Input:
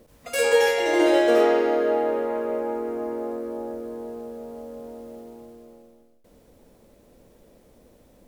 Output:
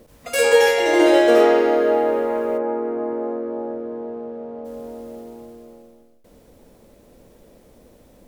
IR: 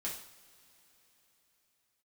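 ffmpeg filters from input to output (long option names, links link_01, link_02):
-filter_complex "[0:a]asplit=3[link_01][link_02][link_03];[link_01]afade=type=out:start_time=2.57:duration=0.02[link_04];[link_02]highpass=100,lowpass=2000,afade=type=in:start_time=2.57:duration=0.02,afade=type=out:start_time=4.64:duration=0.02[link_05];[link_03]afade=type=in:start_time=4.64:duration=0.02[link_06];[link_04][link_05][link_06]amix=inputs=3:normalize=0,volume=4.5dB"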